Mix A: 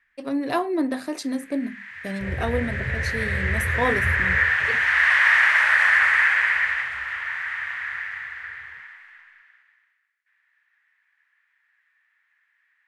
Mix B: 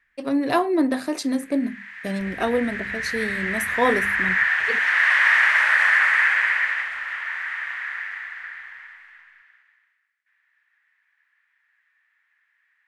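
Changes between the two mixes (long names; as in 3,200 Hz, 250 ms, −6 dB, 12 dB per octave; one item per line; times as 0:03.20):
speech +3.5 dB
reverb: off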